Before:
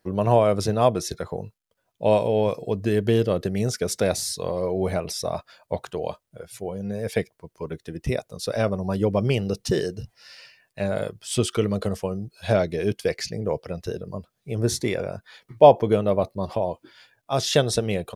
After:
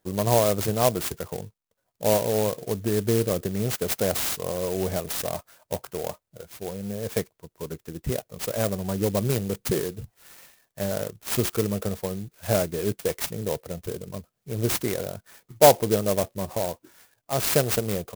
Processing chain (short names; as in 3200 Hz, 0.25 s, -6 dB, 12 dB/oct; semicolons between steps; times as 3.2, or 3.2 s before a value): dynamic EQ 7400 Hz, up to +7 dB, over -44 dBFS, Q 0.8; clock jitter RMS 0.093 ms; gain -2.5 dB